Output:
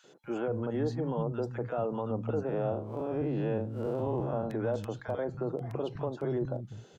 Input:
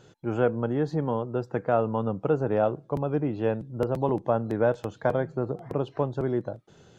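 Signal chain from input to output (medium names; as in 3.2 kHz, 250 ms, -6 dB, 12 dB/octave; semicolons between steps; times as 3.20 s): 2.45–4.50 s: spectral blur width 134 ms; peak limiter -21.5 dBFS, peak gain reduction 10.5 dB; three bands offset in time highs, mids, lows 40/240 ms, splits 200/1200 Hz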